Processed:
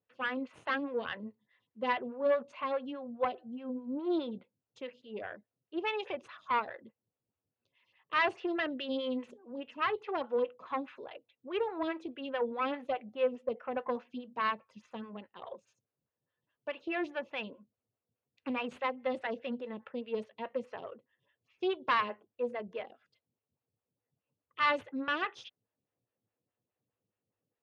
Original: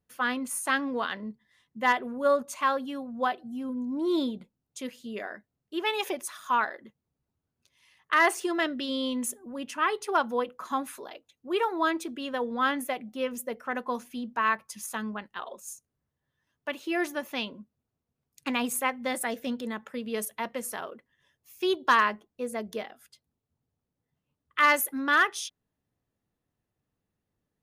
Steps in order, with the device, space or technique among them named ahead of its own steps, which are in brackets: 12.64–14.04 s: peaking EQ 770 Hz +4.5 dB 0.89 oct; vibe pedal into a guitar amplifier (lamp-driven phase shifter 4.8 Hz; valve stage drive 21 dB, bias 0.55; cabinet simulation 94–4000 Hz, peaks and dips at 110 Hz +10 dB, 510 Hz +6 dB, 2.7 kHz +6 dB); trim -1.5 dB

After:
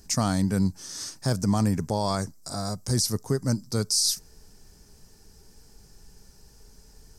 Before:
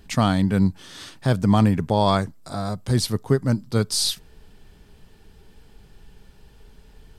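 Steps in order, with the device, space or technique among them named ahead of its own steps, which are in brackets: over-bright horn tweeter (resonant high shelf 4.3 kHz +9.5 dB, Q 3; peak limiter -10 dBFS, peak gain reduction 10 dB); trim -4 dB

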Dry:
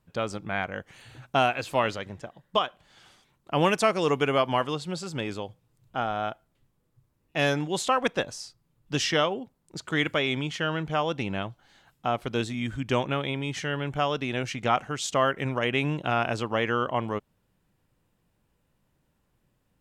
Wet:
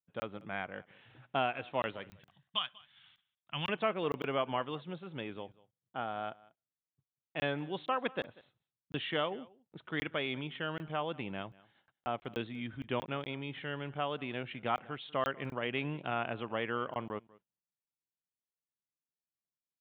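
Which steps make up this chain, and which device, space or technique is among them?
treble shelf 9.5 kHz -5 dB; gate -58 dBFS, range -28 dB; call with lost packets (high-pass 120 Hz 12 dB/octave; resampled via 8 kHz; lost packets of 20 ms random); 2.11–3.69 s: FFT filter 140 Hz 0 dB, 460 Hz -20 dB, 990 Hz -5 dB, 3.1 kHz +7 dB; delay 191 ms -22.5 dB; trim -9 dB

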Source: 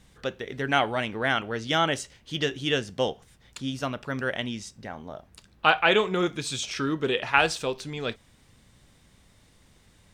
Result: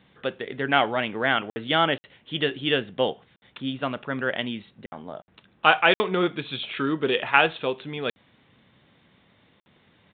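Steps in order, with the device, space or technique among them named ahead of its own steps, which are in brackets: call with lost packets (high-pass 150 Hz 12 dB/octave; resampled via 8 kHz; lost packets of 60 ms); trim +2.5 dB

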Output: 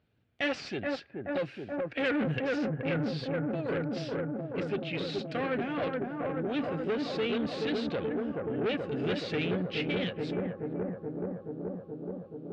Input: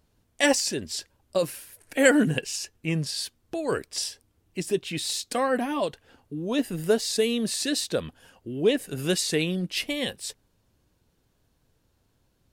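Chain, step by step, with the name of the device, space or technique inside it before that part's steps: analogue delay pedal into a guitar amplifier (bucket-brigade echo 427 ms, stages 4096, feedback 81%, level -4 dB; valve stage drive 24 dB, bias 0.5; cabinet simulation 84–3700 Hz, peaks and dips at 120 Hz +5 dB, 1 kHz -8 dB, 1.5 kHz +3 dB, 2.4 kHz +4 dB); trim -2 dB

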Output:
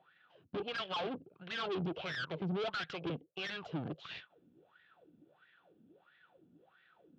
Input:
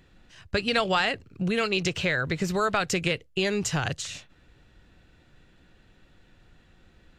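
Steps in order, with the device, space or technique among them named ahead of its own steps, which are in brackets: wah-wah guitar rig (wah-wah 1.5 Hz 240–1900 Hz, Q 10; valve stage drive 51 dB, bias 0.8; cabinet simulation 110–4400 Hz, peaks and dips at 160 Hz +6 dB, 250 Hz -6 dB, 970 Hz -4 dB, 1.9 kHz -9 dB, 3.3 kHz +8 dB); trim +17 dB

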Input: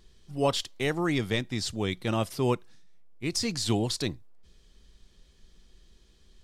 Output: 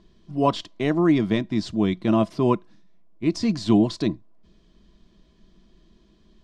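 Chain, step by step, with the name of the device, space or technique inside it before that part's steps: inside a cardboard box (low-pass 5 kHz 12 dB/octave; small resonant body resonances 210/310/640/1000 Hz, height 14 dB, ringing for 45 ms); trim -1.5 dB

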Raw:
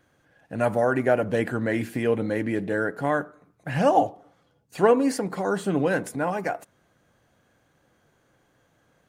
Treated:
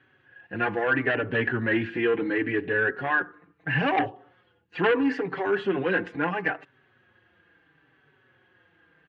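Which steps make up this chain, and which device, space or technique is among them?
barber-pole flanger into a guitar amplifier (endless flanger 4.8 ms -0.74 Hz; saturation -20.5 dBFS, distortion -11 dB; cabinet simulation 89–3500 Hz, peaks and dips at 210 Hz -6 dB, 360 Hz +5 dB, 610 Hz -9 dB, 1.7 kHz +10 dB, 2.8 kHz +8 dB); trim +3.5 dB

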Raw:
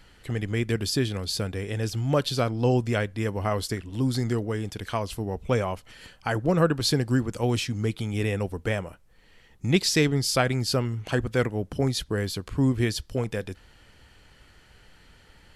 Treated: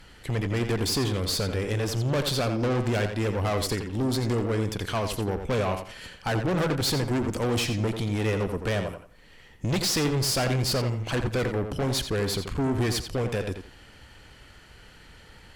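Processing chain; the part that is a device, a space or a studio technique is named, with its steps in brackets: rockabilly slapback (valve stage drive 30 dB, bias 0.6; tape echo 86 ms, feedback 27%, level -6 dB, low-pass 4.9 kHz); trim +7 dB

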